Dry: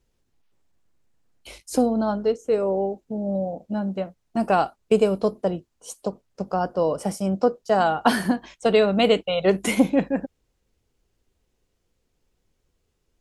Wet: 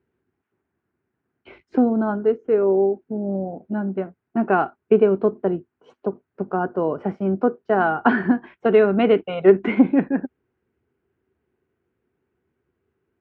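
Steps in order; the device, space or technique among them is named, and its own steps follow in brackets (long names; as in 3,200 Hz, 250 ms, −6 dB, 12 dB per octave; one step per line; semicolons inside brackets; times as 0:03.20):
bass cabinet (loudspeaker in its box 78–2,300 Hz, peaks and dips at 250 Hz +4 dB, 380 Hz +10 dB, 540 Hz −6 dB, 1,500 Hz +6 dB)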